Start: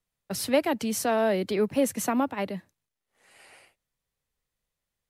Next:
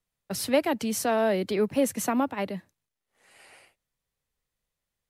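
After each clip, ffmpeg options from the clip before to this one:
-af anull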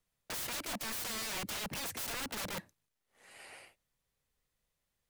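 -af "acompressor=threshold=-27dB:ratio=6,aeval=exprs='(mod(56.2*val(0)+1,2)-1)/56.2':c=same,volume=1dB"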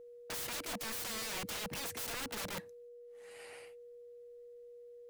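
-af "aeval=exprs='val(0)+0.00355*sin(2*PI*480*n/s)':c=same,volume=-1.5dB"

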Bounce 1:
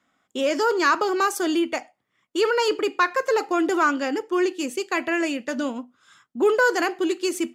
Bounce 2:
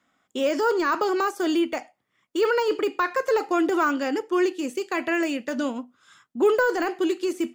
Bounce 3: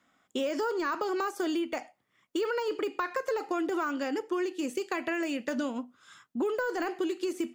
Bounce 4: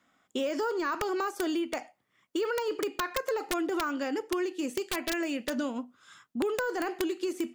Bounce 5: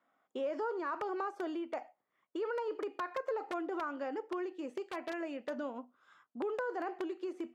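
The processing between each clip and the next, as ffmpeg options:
-af "deesser=0.85"
-af "acompressor=threshold=-28dB:ratio=6"
-af "aeval=exprs='(mod(11.2*val(0)+1,2)-1)/11.2':c=same"
-af "bandpass=f=720:t=q:w=0.93:csg=0,volume=-3dB"

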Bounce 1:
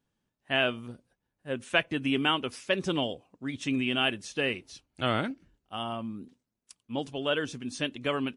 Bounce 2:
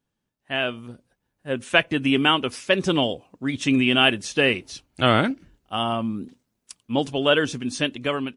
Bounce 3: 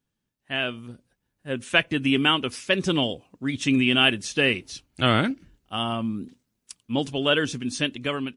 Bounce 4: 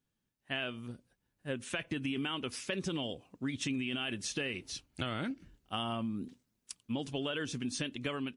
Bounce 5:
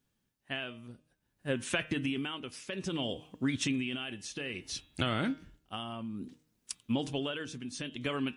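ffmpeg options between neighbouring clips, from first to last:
-af "dynaudnorm=f=430:g=5:m=10.5dB"
-af "equalizer=f=720:t=o:w=1.9:g=-5"
-af "alimiter=limit=-15.5dB:level=0:latency=1:release=25,acompressor=threshold=-29dB:ratio=6,volume=-3.5dB"
-af "bandreject=f=155:t=h:w=4,bandreject=f=310:t=h:w=4,bandreject=f=465:t=h:w=4,bandreject=f=620:t=h:w=4,bandreject=f=775:t=h:w=4,bandreject=f=930:t=h:w=4,bandreject=f=1.085k:t=h:w=4,bandreject=f=1.24k:t=h:w=4,bandreject=f=1.395k:t=h:w=4,bandreject=f=1.55k:t=h:w=4,bandreject=f=1.705k:t=h:w=4,bandreject=f=1.86k:t=h:w=4,bandreject=f=2.015k:t=h:w=4,bandreject=f=2.17k:t=h:w=4,bandreject=f=2.325k:t=h:w=4,bandreject=f=2.48k:t=h:w=4,bandreject=f=2.635k:t=h:w=4,bandreject=f=2.79k:t=h:w=4,bandreject=f=2.945k:t=h:w=4,bandreject=f=3.1k:t=h:w=4,bandreject=f=3.255k:t=h:w=4,bandreject=f=3.41k:t=h:w=4,bandreject=f=3.565k:t=h:w=4,bandreject=f=3.72k:t=h:w=4,bandreject=f=3.875k:t=h:w=4,tremolo=f=0.59:d=0.69,volume=5.5dB"

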